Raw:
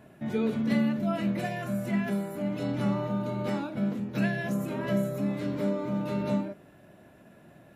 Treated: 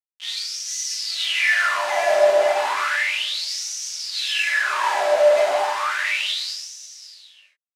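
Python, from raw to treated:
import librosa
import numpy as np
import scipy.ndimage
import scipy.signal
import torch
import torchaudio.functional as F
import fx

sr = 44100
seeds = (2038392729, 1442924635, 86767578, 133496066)

p1 = scipy.signal.sosfilt(scipy.signal.butter(4, 370.0, 'highpass', fs=sr, output='sos'), x)
p2 = fx.band_shelf(p1, sr, hz=2800.0, db=11.0, octaves=1.7)
p3 = fx.granulator(p2, sr, seeds[0], grain_ms=159.0, per_s=22.0, spray_ms=17.0, spread_st=0)
p4 = fx.high_shelf(p3, sr, hz=4300.0, db=-5.5)
p5 = fx.over_compress(p4, sr, threshold_db=-37.0, ratio=-1.0)
p6 = p4 + (p5 * 10.0 ** (1.5 / 20.0))
p7 = fx.schmitt(p6, sr, flips_db=-38.5)
p8 = scipy.signal.sosfilt(scipy.signal.butter(2, 8200.0, 'lowpass', fs=sr, output='sos'), p7)
p9 = p8 + fx.echo_single(p8, sr, ms=541, db=-11.5, dry=0)
p10 = fx.rev_gated(p9, sr, seeds[1], gate_ms=490, shape='falling', drr_db=-5.0)
y = fx.filter_lfo_highpass(p10, sr, shape='sine', hz=0.33, low_hz=620.0, high_hz=5900.0, q=7.5)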